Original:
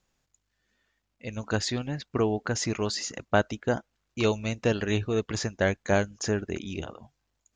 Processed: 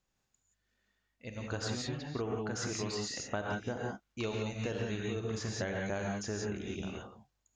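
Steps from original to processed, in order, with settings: gated-style reverb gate 200 ms rising, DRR -1 dB; compression, threshold -24 dBFS, peak gain reduction 8 dB; trim -8 dB

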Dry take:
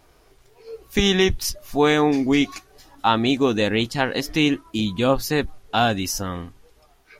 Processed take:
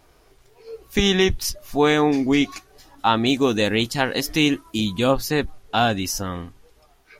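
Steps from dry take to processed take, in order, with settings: 3.26–5.12 s: treble shelf 6.1 kHz +8.5 dB

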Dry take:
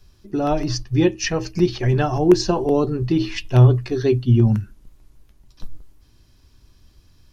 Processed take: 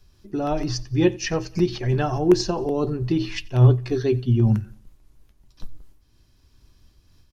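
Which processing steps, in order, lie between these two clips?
on a send: feedback delay 89 ms, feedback 41%, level -22.5 dB; on the sum: random flutter of the level, depth 60%

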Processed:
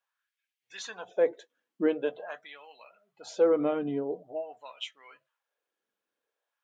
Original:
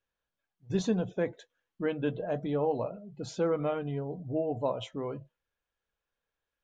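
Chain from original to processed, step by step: LFO high-pass sine 0.46 Hz 250–2400 Hz

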